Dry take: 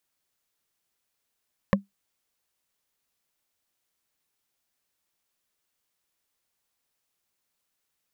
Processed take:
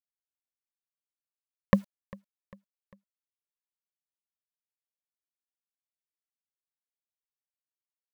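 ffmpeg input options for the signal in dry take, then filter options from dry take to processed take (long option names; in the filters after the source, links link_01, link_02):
-f lavfi -i "aevalsrc='0.211*pow(10,-3*t/0.15)*sin(2*PI*198*t)+0.2*pow(10,-3*t/0.044)*sin(2*PI*545.9*t)+0.188*pow(10,-3*t/0.02)*sin(2*PI*1070*t)+0.178*pow(10,-3*t/0.011)*sin(2*PI*1768.7*t)':duration=0.45:sample_rate=44100"
-filter_complex "[0:a]asplit=2[link_01][link_02];[link_02]alimiter=limit=-16.5dB:level=0:latency=1:release=249,volume=0.5dB[link_03];[link_01][link_03]amix=inputs=2:normalize=0,acrusher=bits=8:mix=0:aa=0.000001,aecho=1:1:399|798|1197:0.0668|0.0321|0.0154"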